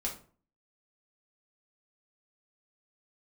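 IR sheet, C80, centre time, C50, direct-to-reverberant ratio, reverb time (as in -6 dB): 14.0 dB, 20 ms, 8.5 dB, -2.5 dB, 0.45 s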